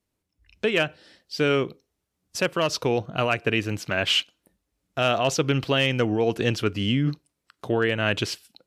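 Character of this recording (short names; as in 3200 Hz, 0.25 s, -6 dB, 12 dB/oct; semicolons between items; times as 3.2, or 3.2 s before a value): noise floor -81 dBFS; spectral tilt -4.5 dB/oct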